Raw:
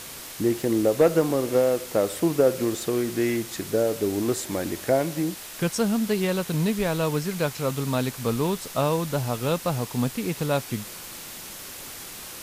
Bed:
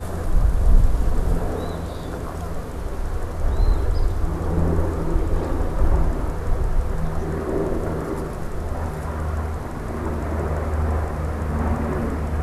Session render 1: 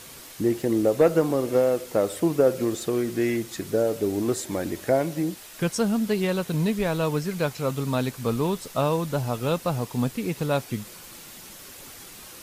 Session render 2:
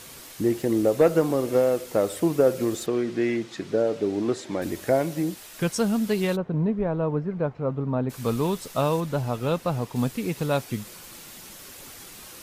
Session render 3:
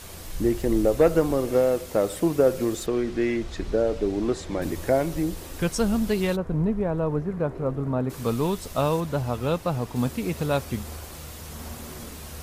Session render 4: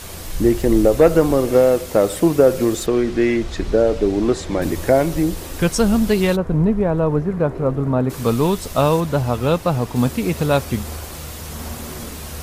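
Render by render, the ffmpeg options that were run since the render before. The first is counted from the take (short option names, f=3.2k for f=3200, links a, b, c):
-af "afftdn=nr=6:nf=-40"
-filter_complex "[0:a]asettb=1/sr,asplit=3[a][b][c];[a]atrim=end=2.864[d];[b]atrim=start=2.86:end=4.62,asetpts=PTS-STARTPTS,afade=t=in:d=0.004:c=qsin,afade=t=out:st=1.756:d=0.004:c=qsin,highpass=130,lowpass=4.6k[e];[c]atrim=start=4.616[f];[d][e]acrossfade=d=0.004:c1=hsin:c2=qsin[g];[g][f]acrossfade=d=0.004:c1=qsin:c2=hsin,asplit=3[h][i][j];[h]afade=t=out:st=6.35:d=0.02[k];[i]lowpass=1k,afade=t=in:st=6.35:d=0.02,afade=t=out:st=8.09:d=0.02[l];[j]afade=t=in:st=8.09:d=0.02[m];[k][l][m]amix=inputs=3:normalize=0,asettb=1/sr,asplit=3[n][o][p];[n]atrim=end=9.004[q];[o]atrim=start=9:end=9.96,asetpts=PTS-STARTPTS,afade=t=in:d=0.004:c=qsin,afade=t=out:st=0.956:d=0.004:c=qsin,highshelf=f=4.3k:g=-7[r];[p]atrim=start=9.956[s];[q][r]acrossfade=d=0.004:c1=hsin:c2=qsin[t];[t][s]acrossfade=d=0.004:c1=qsin:c2=hsin"
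-filter_complex "[1:a]volume=-16.5dB[a];[0:a][a]amix=inputs=2:normalize=0"
-af "volume=7.5dB,alimiter=limit=-3dB:level=0:latency=1"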